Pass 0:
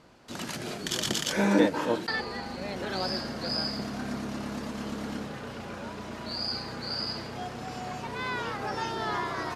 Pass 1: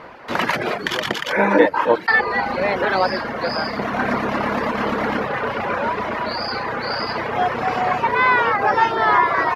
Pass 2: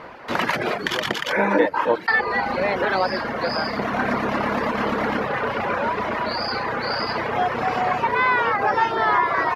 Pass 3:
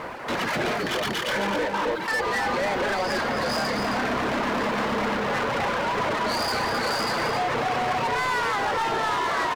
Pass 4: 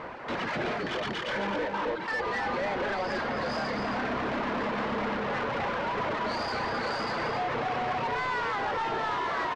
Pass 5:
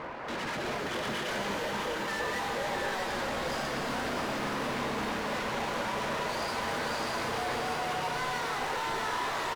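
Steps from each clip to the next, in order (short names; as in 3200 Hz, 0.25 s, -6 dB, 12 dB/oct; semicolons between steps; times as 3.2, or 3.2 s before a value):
reverb removal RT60 0.67 s; vocal rider within 4 dB 0.5 s; graphic EQ 500/1000/2000/8000 Hz +8/+10/+11/-12 dB; gain +5.5 dB
compressor 1.5:1, threshold -21 dBFS, peak gain reduction 5 dB
limiter -15.5 dBFS, peak gain reduction 10 dB; sample leveller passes 3; echo 0.265 s -6.5 dB; gain -6.5 dB
air absorption 130 m; gain -4.5 dB
hard clip -34.5 dBFS, distortion -9 dB; echo 0.65 s -5.5 dB; shimmer reverb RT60 3.4 s, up +12 st, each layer -8 dB, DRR 4 dB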